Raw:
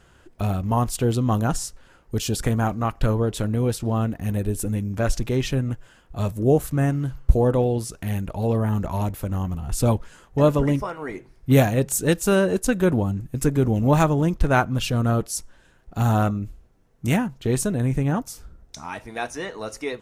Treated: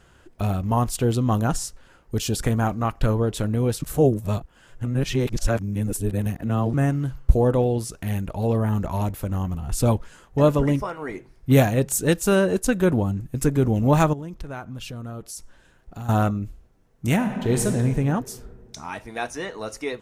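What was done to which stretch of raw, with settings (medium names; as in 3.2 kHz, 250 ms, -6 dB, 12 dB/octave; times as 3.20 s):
3.82–6.74 s: reverse
14.13–16.09 s: compression 3:1, threshold -35 dBFS
17.14–17.66 s: reverb throw, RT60 2.3 s, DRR 3 dB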